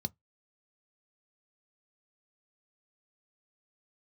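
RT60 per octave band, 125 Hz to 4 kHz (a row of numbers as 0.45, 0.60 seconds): 0.20, 0.15, 0.15, 0.15, 0.15, 0.10 seconds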